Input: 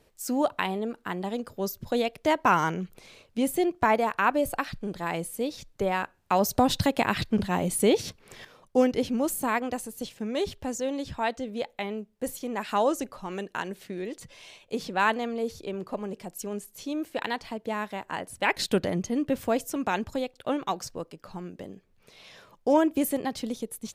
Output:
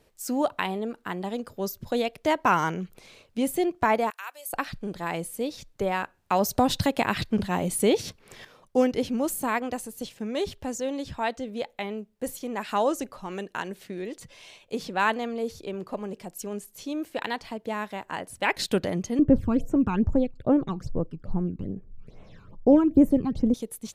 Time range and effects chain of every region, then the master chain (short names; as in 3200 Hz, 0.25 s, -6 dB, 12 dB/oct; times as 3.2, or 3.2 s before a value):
4.1–4.53 HPF 410 Hz 24 dB/oct + differentiator
19.19–23.54 tilt -4.5 dB/oct + phaser stages 12, 2.4 Hz, lowest notch 560–4600 Hz
whole clip: dry